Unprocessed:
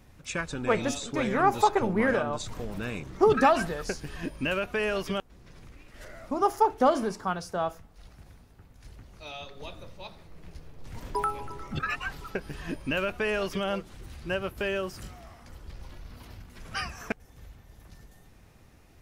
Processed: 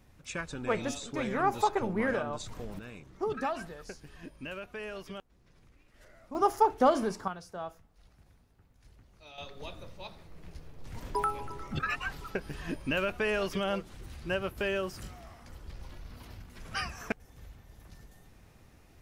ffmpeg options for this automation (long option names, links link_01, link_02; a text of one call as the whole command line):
ffmpeg -i in.wav -af "asetnsamples=nb_out_samples=441:pad=0,asendcmd='2.79 volume volume -12dB;6.35 volume volume -1.5dB;7.28 volume volume -10dB;9.38 volume volume -1.5dB',volume=-5dB" out.wav